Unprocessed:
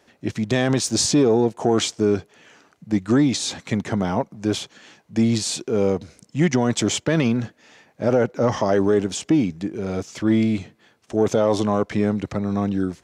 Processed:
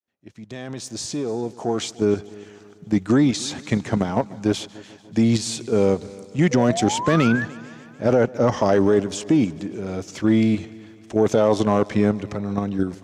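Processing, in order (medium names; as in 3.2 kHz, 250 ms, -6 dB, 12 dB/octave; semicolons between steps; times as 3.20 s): fade-in on the opening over 2.70 s; in parallel at +2 dB: level held to a coarse grid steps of 21 dB; on the sum: hard clipper -5 dBFS, distortion -33 dB; painted sound rise, 6.51–7.45 s, 480–1800 Hz -23 dBFS; multi-head delay 147 ms, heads first and second, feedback 55%, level -23.5 dB; trim -4 dB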